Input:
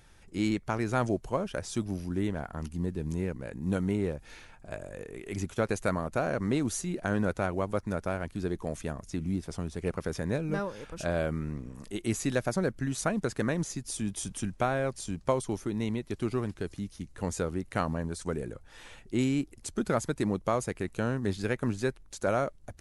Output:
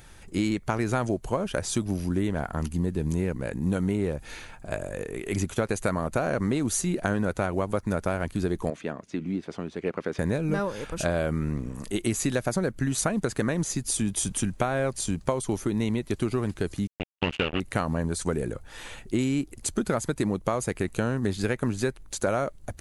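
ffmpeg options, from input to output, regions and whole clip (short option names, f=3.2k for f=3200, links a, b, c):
-filter_complex "[0:a]asettb=1/sr,asplit=3[a][b][c];[a]atrim=end=8.704[d];[b]atrim=start=8.7:end=10.19,asetpts=PTS-STARTPTS,afade=t=in:d=0.004:c=qsin,afade=t=out:st=1.486:d=0.004:c=qsin,highpass=260,lowpass=2.9k,equalizer=f=890:w=0.63:g=-5[e];[c]atrim=start=10.186[f];[d][e]acrossfade=d=0.004:c1=hsin:c2=qsin[g];[g][f]acrossfade=d=0.004:c1=qsin:c2=hsin,asettb=1/sr,asplit=3[h][i][j];[h]atrim=end=16.874[k];[i]atrim=start=16.87:end=17.6,asetpts=PTS-STARTPTS,afade=t=in:d=0.004:c=qsin,afade=t=out:st=0.726:d=0.004:c=qsin,acrusher=bits=4:mix=0:aa=0.5,aeval=exprs='sgn(val(0))*max(abs(val(0))-0.00266,0)':c=same,lowpass=f=2.8k:t=q:w=9.4[l];[j]atrim=start=17.596[m];[k][l]acrossfade=d=0.004:c1=hsin:c2=qsin[n];[n][m]acrossfade=d=0.004:c1=qsin:c2=hsin,highshelf=f=9.8k:g=5.5,bandreject=f=5.4k:w=13,acompressor=threshold=-30dB:ratio=6,volume=8dB"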